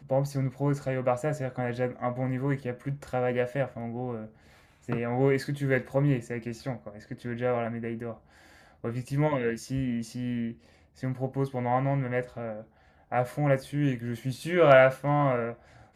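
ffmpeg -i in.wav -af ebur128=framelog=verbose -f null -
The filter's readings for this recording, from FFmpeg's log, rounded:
Integrated loudness:
  I:         -28.6 LUFS
  Threshold: -39.2 LUFS
Loudness range:
  LRA:         7.1 LU
  Threshold: -50.1 LUFS
  LRA low:   -32.6 LUFS
  LRA high:  -25.5 LUFS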